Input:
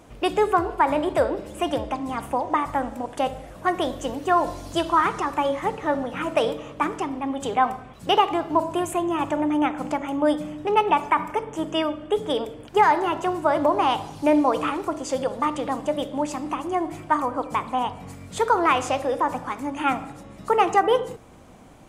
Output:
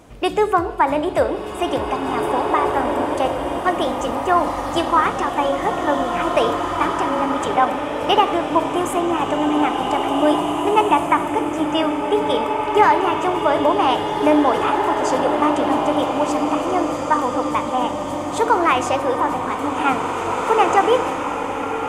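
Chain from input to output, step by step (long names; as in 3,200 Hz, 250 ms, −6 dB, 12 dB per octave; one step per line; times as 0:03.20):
slow-attack reverb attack 2,140 ms, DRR 2 dB
level +3 dB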